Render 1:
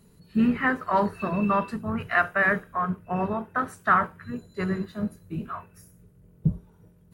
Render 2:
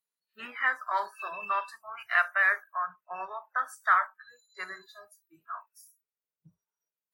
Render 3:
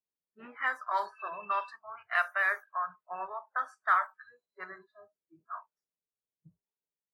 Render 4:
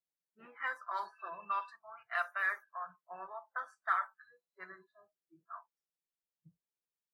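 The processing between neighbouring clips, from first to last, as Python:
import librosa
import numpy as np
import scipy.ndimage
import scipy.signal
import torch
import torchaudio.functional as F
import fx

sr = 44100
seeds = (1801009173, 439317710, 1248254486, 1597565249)

y1 = scipy.signal.sosfilt(scipy.signal.butter(2, 1200.0, 'highpass', fs=sr, output='sos'), x)
y1 = fx.noise_reduce_blind(y1, sr, reduce_db=25)
y2 = fx.env_lowpass(y1, sr, base_hz=540.0, full_db=-24.5)
y2 = fx.dynamic_eq(y2, sr, hz=1900.0, q=1.2, threshold_db=-38.0, ratio=4.0, max_db=-5)
y3 = y2 + 0.53 * np.pad(y2, (int(5.9 * sr / 1000.0), 0))[:len(y2)]
y3 = y3 * 10.0 ** (-7.0 / 20.0)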